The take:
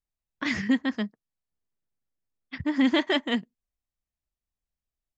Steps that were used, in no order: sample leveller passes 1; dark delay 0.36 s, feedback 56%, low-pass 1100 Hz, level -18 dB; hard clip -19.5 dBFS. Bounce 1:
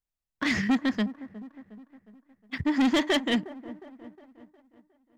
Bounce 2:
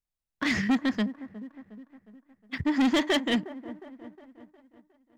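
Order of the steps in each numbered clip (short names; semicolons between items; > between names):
hard clip > dark delay > sample leveller; dark delay > hard clip > sample leveller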